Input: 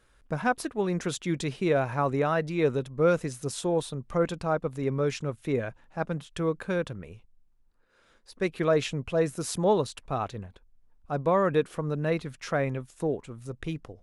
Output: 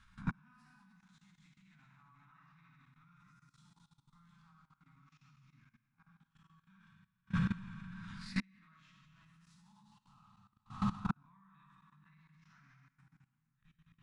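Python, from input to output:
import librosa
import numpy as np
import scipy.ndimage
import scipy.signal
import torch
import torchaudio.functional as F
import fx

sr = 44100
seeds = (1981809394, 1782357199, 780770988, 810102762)

p1 = fx.spec_swells(x, sr, rise_s=0.34)
p2 = p1 + fx.echo_single(p1, sr, ms=169, db=-17.0, dry=0)
p3 = fx.rev_plate(p2, sr, seeds[0], rt60_s=2.7, hf_ratio=0.9, predelay_ms=0, drr_db=-5.5)
p4 = fx.gate_flip(p3, sr, shuts_db=-21.0, range_db=-40)
p5 = fx.dynamic_eq(p4, sr, hz=270.0, q=0.74, threshold_db=-55.0, ratio=4.0, max_db=6)
p6 = scipy.signal.sosfilt(scipy.signal.ellip(3, 1.0, 50, [220.0, 990.0], 'bandstop', fs=sr, output='sos'), p5)
p7 = 10.0 ** (-33.5 / 20.0) * np.tanh(p6 / 10.0 ** (-33.5 / 20.0))
p8 = p6 + (p7 * librosa.db_to_amplitude(-7.5))
p9 = scipy.signal.sosfilt(scipy.signal.butter(2, 6400.0, 'lowpass', fs=sr, output='sos'), p8)
p10 = fx.high_shelf(p9, sr, hz=3700.0, db=-4.0)
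p11 = fx.level_steps(p10, sr, step_db=17)
y = p11 * librosa.db_to_amplitude(3.5)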